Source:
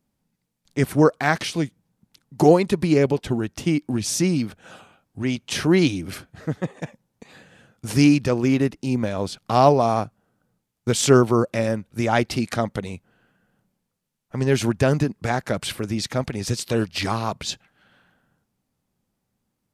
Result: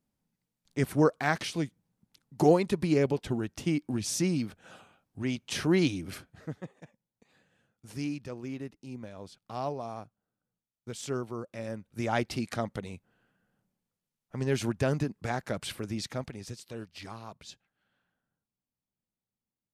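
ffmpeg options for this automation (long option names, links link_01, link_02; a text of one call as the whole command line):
ffmpeg -i in.wav -af "volume=2.5dB,afade=type=out:start_time=6.16:duration=0.6:silence=0.266073,afade=type=in:start_time=11.5:duration=0.57:silence=0.316228,afade=type=out:start_time=15.99:duration=0.6:silence=0.316228" out.wav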